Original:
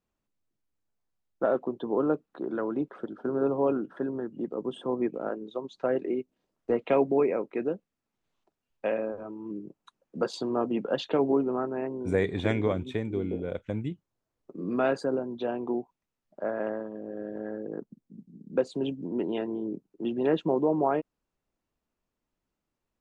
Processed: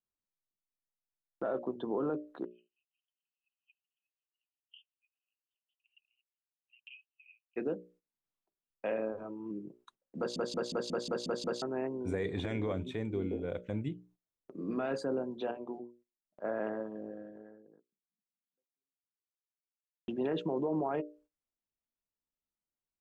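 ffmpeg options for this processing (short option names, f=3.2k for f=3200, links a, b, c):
-filter_complex "[0:a]asplit=3[a][b][c];[a]afade=t=out:st=2.44:d=0.02[d];[b]asuperpass=centerf=2800:order=8:qfactor=4.9,afade=t=in:st=2.44:d=0.02,afade=t=out:st=7.56:d=0.02[e];[c]afade=t=in:st=7.56:d=0.02[f];[d][e][f]amix=inputs=3:normalize=0,asplit=12[g][h][i][j][k][l][m][n][o][p][q][r];[g]atrim=end=10.362[s];[h]atrim=start=10.178:end=10.362[t];[i]atrim=start=10.178:end=10.362[u];[j]atrim=start=10.178:end=10.362[v];[k]atrim=start=10.178:end=10.362[w];[l]atrim=start=10.178:end=10.362[x];[m]atrim=start=10.178:end=10.362[y];[n]atrim=start=10.178:end=10.362[z];[o]atrim=start=11.618:end=15.512[aa];[p]atrim=start=15.508:end=16.442,asetpts=PTS-STARTPTS,volume=-6dB[ab];[q]atrim=start=16.438:end=20.08,asetpts=PTS-STARTPTS,afade=t=out:st=0.602:d=3.04:c=exp[ac];[r]atrim=start=20.08,asetpts=PTS-STARTPTS,afade=t=in:d=0.004:c=hsin[ad];[s][t]acrossfade=d=0.004:c1=hsin:c2=hsin[ae];[ae][u]acrossfade=d=0.004:c1=hsin:c2=hsin[af];[af][v]acrossfade=d=0.004:c1=hsin:c2=hsin[ag];[ag][w]acrossfade=d=0.004:c1=hsin:c2=hsin[ah];[ah][x]acrossfade=d=0.004:c1=hsin:c2=hsin[ai];[ai][y]acrossfade=d=0.004:c1=hsin:c2=hsin[aj];[aj][z]acrossfade=d=0.004:c1=hsin:c2=hsin[ak];[ak][aa]acrossfade=d=0.004:c1=hsin:c2=hsin[al];[al][ab]acrossfade=d=0.004:c1=hsin:c2=hsin[am];[ac][ad]concat=n=2:v=0:a=1[an];[am][an]acrossfade=d=0.004:c1=hsin:c2=hsin,bandreject=f=60:t=h:w=6,bandreject=f=120:t=h:w=6,bandreject=f=180:t=h:w=6,bandreject=f=240:t=h:w=6,bandreject=f=300:t=h:w=6,bandreject=f=360:t=h:w=6,bandreject=f=420:t=h:w=6,bandreject=f=480:t=h:w=6,bandreject=f=540:t=h:w=6,bandreject=f=600:t=h:w=6,alimiter=limit=-22dB:level=0:latency=1:release=17,agate=range=-14dB:threshold=-59dB:ratio=16:detection=peak,volume=-3dB"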